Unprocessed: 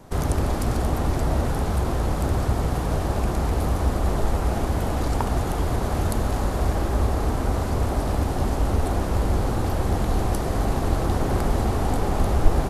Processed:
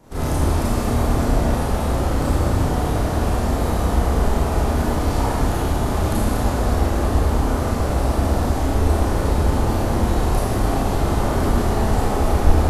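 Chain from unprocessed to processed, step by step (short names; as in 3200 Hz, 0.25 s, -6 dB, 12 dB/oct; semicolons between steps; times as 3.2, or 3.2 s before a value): Schroeder reverb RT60 1.5 s, combs from 26 ms, DRR -9.5 dB; gain -5.5 dB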